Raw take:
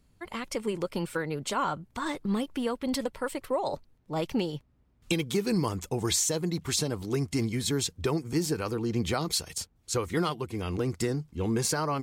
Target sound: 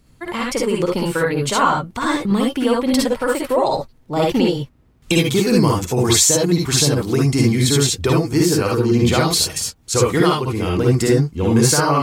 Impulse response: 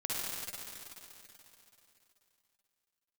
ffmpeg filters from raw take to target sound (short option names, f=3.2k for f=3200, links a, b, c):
-filter_complex "[0:a]acontrast=31[a];[1:a]atrim=start_sample=2205,afade=t=out:st=0.13:d=0.01,atrim=end_sample=6174[b];[a][b]afir=irnorm=-1:irlink=0,volume=7.5dB"